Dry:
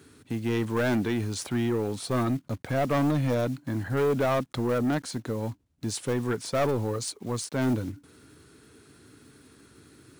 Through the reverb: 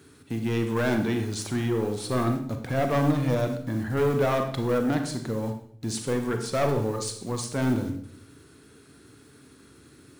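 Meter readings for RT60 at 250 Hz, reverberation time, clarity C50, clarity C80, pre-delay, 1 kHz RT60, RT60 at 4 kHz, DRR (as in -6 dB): 0.80 s, 0.65 s, 7.5 dB, 11.0 dB, 31 ms, 0.55 s, 0.55 s, 5.0 dB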